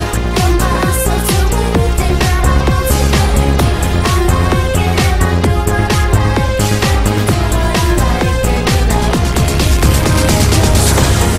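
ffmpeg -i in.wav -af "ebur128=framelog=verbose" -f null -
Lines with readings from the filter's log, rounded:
Integrated loudness:
  I:         -12.4 LUFS
  Threshold: -22.4 LUFS
Loudness range:
  LRA:         1.1 LU
  Threshold: -32.6 LUFS
  LRA low:   -13.0 LUFS
  LRA high:  -11.9 LUFS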